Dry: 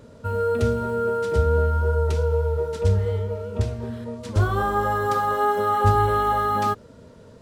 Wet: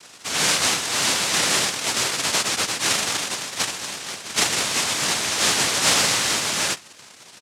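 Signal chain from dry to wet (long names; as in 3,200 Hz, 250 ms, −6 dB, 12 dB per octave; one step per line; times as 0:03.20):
sub-octave generator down 2 octaves, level 0 dB
comb filter 6.9 ms, depth 52%
cochlear-implant simulation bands 1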